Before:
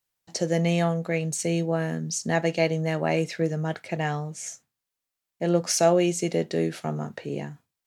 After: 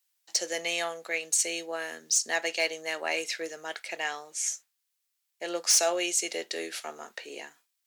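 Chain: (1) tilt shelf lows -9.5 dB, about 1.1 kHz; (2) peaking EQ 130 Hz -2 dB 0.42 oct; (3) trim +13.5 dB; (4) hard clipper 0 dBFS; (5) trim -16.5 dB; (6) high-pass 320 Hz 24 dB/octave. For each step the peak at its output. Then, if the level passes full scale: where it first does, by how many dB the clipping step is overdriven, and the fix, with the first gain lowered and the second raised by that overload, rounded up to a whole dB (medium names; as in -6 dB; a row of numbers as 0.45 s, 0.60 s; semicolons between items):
-4.0 dBFS, -4.0 dBFS, +9.5 dBFS, 0.0 dBFS, -16.5 dBFS, -13.0 dBFS; step 3, 9.5 dB; step 3 +3.5 dB, step 5 -6.5 dB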